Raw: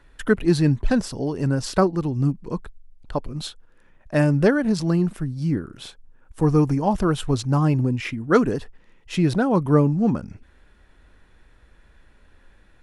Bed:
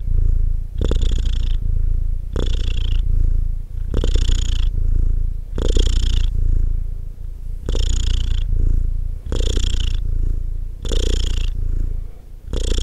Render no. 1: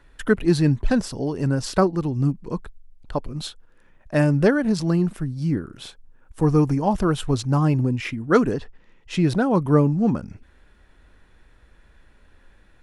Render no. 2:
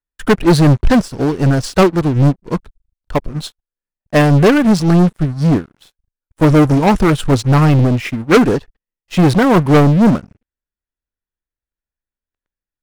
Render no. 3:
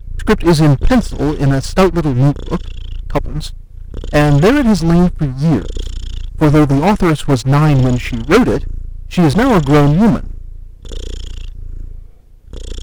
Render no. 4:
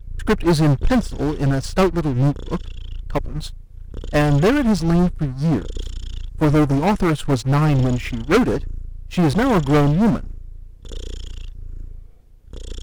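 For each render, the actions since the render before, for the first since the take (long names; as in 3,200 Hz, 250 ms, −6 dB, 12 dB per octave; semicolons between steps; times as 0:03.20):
0:08.54–0:09.25: low-pass filter 5,500 Hz → 10,000 Hz
leveller curve on the samples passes 5; expander for the loud parts 2.5 to 1, over −24 dBFS
mix in bed −6.5 dB
level −6 dB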